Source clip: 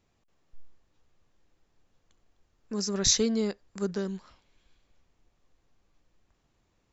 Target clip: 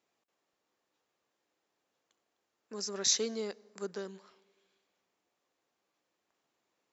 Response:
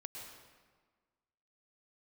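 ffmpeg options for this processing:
-filter_complex "[0:a]highpass=360,asplit=2[link_01][link_02];[link_02]highshelf=frequency=2000:gain=-10.5[link_03];[1:a]atrim=start_sample=2205,highshelf=frequency=4300:gain=8.5[link_04];[link_03][link_04]afir=irnorm=-1:irlink=0,volume=-16dB[link_05];[link_01][link_05]amix=inputs=2:normalize=0,volume=-5dB"

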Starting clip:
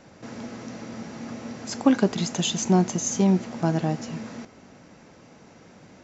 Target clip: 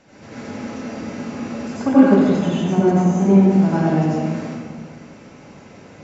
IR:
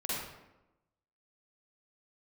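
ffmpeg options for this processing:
-filter_complex "[0:a]equalizer=frequency=2600:width_type=o:width=0.81:gain=3.5,acrossover=split=2000[link_01][link_02];[link_02]acompressor=threshold=-47dB:ratio=6[link_03];[link_01][link_03]amix=inputs=2:normalize=0[link_04];[1:a]atrim=start_sample=2205,asetrate=23814,aresample=44100[link_05];[link_04][link_05]afir=irnorm=-1:irlink=0,volume=-2.5dB"

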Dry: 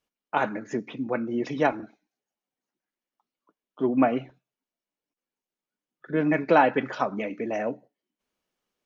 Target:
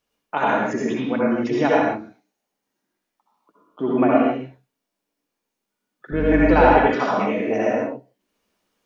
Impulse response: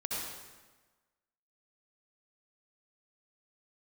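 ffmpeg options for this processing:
-filter_complex "[0:a]asplit=2[link_01][link_02];[link_02]acompressor=threshold=-34dB:ratio=6,volume=-1dB[link_03];[link_01][link_03]amix=inputs=2:normalize=0,asettb=1/sr,asplit=3[link_04][link_05][link_06];[link_04]atrim=end=6.124[link_07];[link_05]atrim=start=6.12:end=6.67,asetpts=PTS-STARTPTS,afade=type=in:duration=0.004:curve=qsin,afade=type=out:start_time=0.546:duration=0.004:curve=qsin,aeval=exprs='val(0)+0.0398*(sin(2*PI*50*n/s)+sin(2*PI*2*50*n/s)/2+sin(2*PI*3*50*n/s)/3+sin(2*PI*4*50*n/s)/4+sin(2*PI*5*50*n/s)/5)':channel_layout=same[link_08];[link_06]atrim=start=6.666[link_09];[link_07][link_08]acrossfade=duration=0.004:curve1=hsin:curve2=qsin[link_10];[link_10][link_09]acrossfade=duration=0.004:curve1=qsin:curve2=hsin[link_11];[1:a]atrim=start_sample=2205,afade=type=out:start_time=0.33:duration=0.01,atrim=end_sample=14994[link_12];[link_11][link_12]afir=irnorm=-1:irlink=0,volume=1.5dB"

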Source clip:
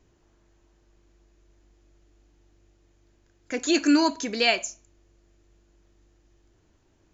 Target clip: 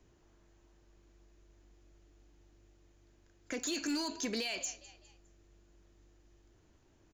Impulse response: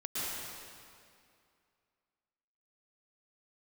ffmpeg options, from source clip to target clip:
-filter_complex "[0:a]acrossover=split=130|3000[link_01][link_02][link_03];[link_02]acompressor=threshold=-32dB:ratio=2.5[link_04];[link_01][link_04][link_03]amix=inputs=3:normalize=0,asplit=2[link_05][link_06];[link_06]asplit=3[link_07][link_08][link_09];[link_07]adelay=204,afreqshift=44,volume=-23dB[link_10];[link_08]adelay=408,afreqshift=88,volume=-30.7dB[link_11];[link_09]adelay=612,afreqshift=132,volume=-38.5dB[link_12];[link_10][link_11][link_12]amix=inputs=3:normalize=0[link_13];[link_05][link_13]amix=inputs=2:normalize=0,alimiter=limit=-23.5dB:level=0:latency=1:release=34,volume=27dB,asoftclip=hard,volume=-27dB,volume=-2.5dB"

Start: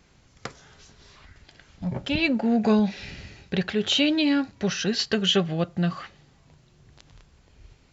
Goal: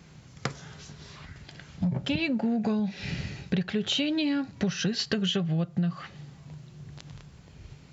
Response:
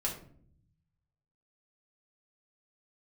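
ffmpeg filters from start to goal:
-af "highpass=53,equalizer=frequency=150:width=1.8:gain=10.5,acompressor=threshold=-28dB:ratio=12,volume=4dB"

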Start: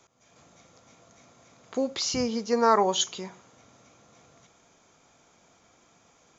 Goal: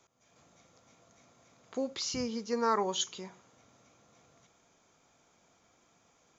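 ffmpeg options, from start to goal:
ffmpeg -i in.wav -filter_complex "[0:a]asettb=1/sr,asplit=3[link_01][link_02][link_03];[link_01]atrim=end=1.934[link_04];[link_02]atrim=start=1.93:end=3.16,asetpts=PTS-STARTPTS,afade=type=in:duration=0.004:curve=qsin,afade=type=out:start_time=1.226:duration=0.004:curve=qsin,equalizer=frequency=680:width_type=o:width=0.48:gain=-7[link_05];[link_03]atrim=start=3.156[link_06];[link_04][link_05]acrossfade=duration=0.004:curve1=hsin:curve2=qsin[link_07];[link_07][link_06]acrossfade=duration=0.004:curve1=qsin:curve2=hsin,volume=-6.5dB" out.wav

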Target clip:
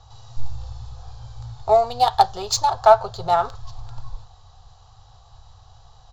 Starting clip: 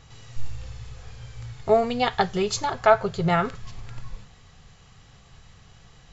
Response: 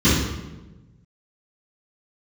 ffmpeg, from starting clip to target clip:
-filter_complex "[0:a]firequalizer=gain_entry='entry(110,0);entry(170,-22);entry(780,6);entry(2100,-19);entry(3900,4)':delay=0.05:min_phase=1,acrossover=split=130[link_01][link_02];[link_02]adynamicsmooth=sensitivity=3.5:basefreq=4200[link_03];[link_01][link_03]amix=inputs=2:normalize=0,volume=4dB"

